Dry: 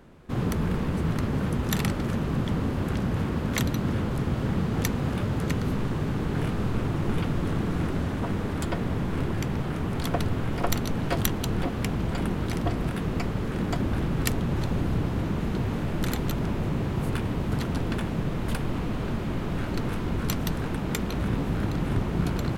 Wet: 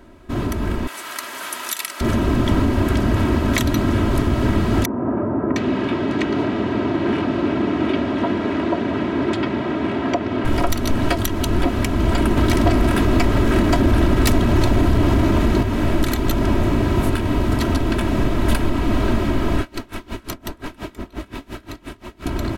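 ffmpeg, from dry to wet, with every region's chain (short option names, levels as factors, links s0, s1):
-filter_complex "[0:a]asettb=1/sr,asplit=3[s0][s1][s2];[s0]atrim=end=0.874[s3];[s1]atrim=start=0.87:end=2.01,asetpts=PTS-STARTPTS,afade=t=in:d=0.004:c=qsin,afade=t=out:st=1.136:d=0.004:c=qsin,highpass=1100,equalizer=f=12000:w=0.43:g=10[s4];[s2]atrim=start=2.006[s5];[s3][s4]acrossfade=d=0.004:c1=hsin:c2=qsin[s6];[s6][s5]acrossfade=d=0.004:c1=qsin:c2=hsin,asettb=1/sr,asplit=3[s7][s8][s9];[s7]atrim=end=4.854[s10];[s8]atrim=start=4.85:end=10.45,asetpts=PTS-STARTPTS,afade=t=in:d=0.004:c=qsin,afade=t=out:st=5.596:d=0.004:c=qsin,highpass=190,lowpass=3400,acrossover=split=1300[s11][s12];[s12]adelay=710[s13];[s11][s13]amix=inputs=2:normalize=0,atrim=end_sample=246960[s14];[s9]atrim=start=10.446[s15];[s10][s14]acrossfade=d=0.004:c1=hsin:c2=qsin[s16];[s16][s15]acrossfade=d=0.004:c1=qsin:c2=hsin,asettb=1/sr,asplit=3[s17][s18][s19];[s17]atrim=end=12.374[s20];[s18]atrim=start=12.37:end=15.63,asetpts=PTS-STARTPTS,afade=t=in:d=0.004:c=qsin,afade=t=out:st=3.256:d=0.004:c=qsin,acontrast=86,asoftclip=type=hard:threshold=0.168[s21];[s19]atrim=start=15.626[s22];[s20][s21]acrossfade=d=0.004:c1=hsin:c2=qsin[s23];[s23][s22]acrossfade=d=0.004:c1=qsin:c2=hsin,asettb=1/sr,asplit=3[s24][s25][s26];[s24]atrim=end=19.614[s27];[s25]atrim=start=19.61:end=22.26,asetpts=PTS-STARTPTS,afade=t=in:d=0.004:c=qsin,afade=t=out:st=2.646:d=0.004:c=qsin,acrossover=split=250|1700[s28][s29][s30];[s28]acompressor=threshold=0.01:ratio=4[s31];[s29]acompressor=threshold=0.01:ratio=4[s32];[s30]acompressor=threshold=0.00708:ratio=4[s33];[s31][s32][s33]amix=inputs=3:normalize=0,aeval=exprs='val(0)*pow(10,-25*(0.5-0.5*cos(2*PI*5.7*n/s))/20)':c=same[s34];[s26]atrim=start=22.256[s35];[s27][s34]acrossfade=d=0.004:c1=hsin:c2=qsin[s36];[s36][s35]acrossfade=d=0.004:c1=qsin:c2=hsin,aecho=1:1:3.1:0.7,alimiter=limit=0.133:level=0:latency=1:release=238,dynaudnorm=f=120:g=21:m=1.78,volume=1.78"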